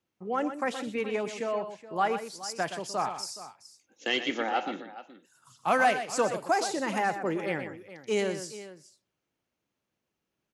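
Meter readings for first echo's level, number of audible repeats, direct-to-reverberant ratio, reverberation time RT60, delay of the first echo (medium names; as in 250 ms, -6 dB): -10.0 dB, 2, no reverb, no reverb, 122 ms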